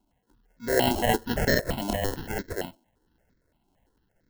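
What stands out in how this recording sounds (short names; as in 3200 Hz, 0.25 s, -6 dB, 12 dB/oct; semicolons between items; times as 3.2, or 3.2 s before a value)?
aliases and images of a low sample rate 1200 Hz, jitter 0%; tremolo saw up 1.5 Hz, depth 35%; notches that jump at a steady rate 8.8 Hz 490–2900 Hz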